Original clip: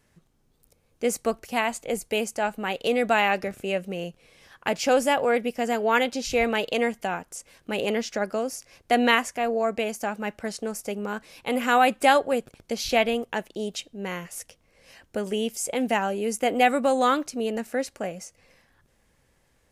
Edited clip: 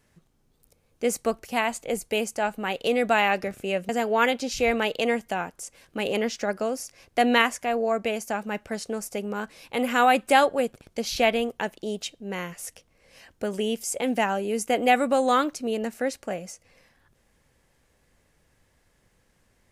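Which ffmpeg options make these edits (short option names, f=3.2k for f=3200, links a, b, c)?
-filter_complex "[0:a]asplit=2[a][b];[a]atrim=end=3.892[c];[b]atrim=start=5.618[d];[c][d]acrossfade=d=0.004:c1=hsin:c2=hsin"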